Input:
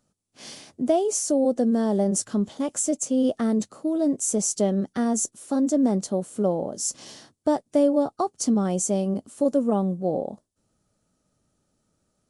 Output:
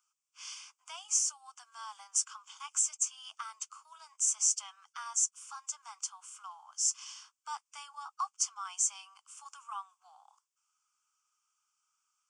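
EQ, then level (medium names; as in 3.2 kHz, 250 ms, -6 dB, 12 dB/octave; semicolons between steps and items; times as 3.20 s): steep high-pass 1 kHz 48 dB/octave; static phaser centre 2.7 kHz, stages 8; 0.0 dB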